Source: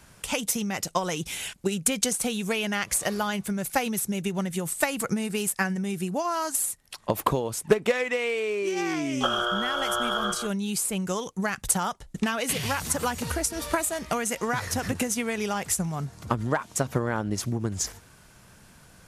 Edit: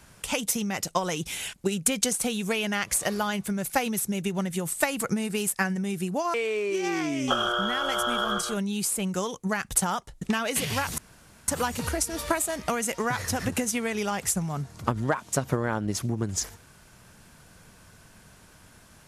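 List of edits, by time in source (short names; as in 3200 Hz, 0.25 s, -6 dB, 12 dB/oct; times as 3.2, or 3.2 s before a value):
6.34–8.27 cut
12.91 insert room tone 0.50 s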